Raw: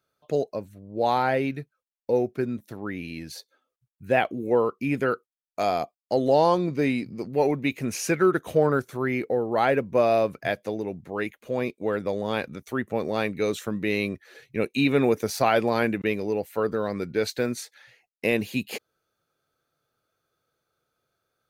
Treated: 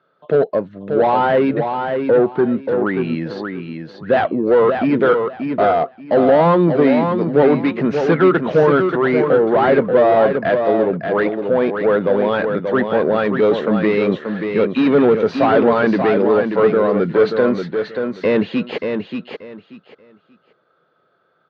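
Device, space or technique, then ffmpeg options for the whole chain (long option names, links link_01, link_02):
overdrive pedal into a guitar cabinet: -filter_complex "[0:a]asplit=2[link_01][link_02];[link_02]highpass=frequency=720:poles=1,volume=23dB,asoftclip=type=tanh:threshold=-8.5dB[link_03];[link_01][link_03]amix=inputs=2:normalize=0,lowpass=frequency=1000:poles=1,volume=-6dB,highpass=110,equalizer=frequency=170:width_type=q:width=4:gain=7,equalizer=frequency=780:width_type=q:width=4:gain=-4,equalizer=frequency=2400:width_type=q:width=4:gain=-9,lowpass=frequency=3600:width=0.5412,lowpass=frequency=3600:width=1.3066,aecho=1:1:583|1166|1749:0.501|0.105|0.0221,volume=5dB"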